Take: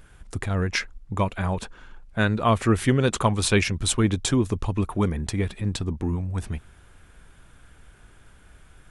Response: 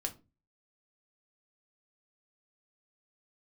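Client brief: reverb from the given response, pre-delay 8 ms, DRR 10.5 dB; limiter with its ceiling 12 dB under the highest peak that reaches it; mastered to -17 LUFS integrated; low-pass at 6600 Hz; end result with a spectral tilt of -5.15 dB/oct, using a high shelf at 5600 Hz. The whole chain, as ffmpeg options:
-filter_complex "[0:a]lowpass=6.6k,highshelf=f=5.6k:g=8.5,alimiter=limit=-18.5dB:level=0:latency=1,asplit=2[a][b];[1:a]atrim=start_sample=2205,adelay=8[c];[b][c]afir=irnorm=-1:irlink=0,volume=-11dB[d];[a][d]amix=inputs=2:normalize=0,volume=11.5dB"

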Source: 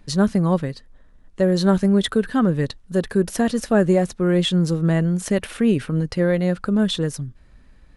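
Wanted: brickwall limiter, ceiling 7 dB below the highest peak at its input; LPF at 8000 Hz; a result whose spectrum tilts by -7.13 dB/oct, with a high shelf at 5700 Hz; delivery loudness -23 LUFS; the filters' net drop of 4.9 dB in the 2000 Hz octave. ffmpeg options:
-af "lowpass=8k,equalizer=f=2k:t=o:g=-5.5,highshelf=f=5.7k:g=-8,alimiter=limit=-12.5dB:level=0:latency=1"

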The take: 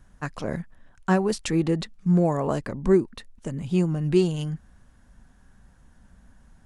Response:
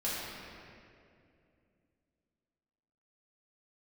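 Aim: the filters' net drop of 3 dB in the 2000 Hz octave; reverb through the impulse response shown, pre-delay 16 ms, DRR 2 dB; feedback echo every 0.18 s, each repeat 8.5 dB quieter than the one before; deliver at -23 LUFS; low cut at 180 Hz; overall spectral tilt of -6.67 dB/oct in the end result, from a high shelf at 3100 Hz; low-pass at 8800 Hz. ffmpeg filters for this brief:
-filter_complex "[0:a]highpass=180,lowpass=8.8k,equalizer=f=2k:t=o:g=-6.5,highshelf=f=3.1k:g=7,aecho=1:1:180|360|540|720:0.376|0.143|0.0543|0.0206,asplit=2[a][b];[1:a]atrim=start_sample=2205,adelay=16[c];[b][c]afir=irnorm=-1:irlink=0,volume=-8.5dB[d];[a][d]amix=inputs=2:normalize=0"

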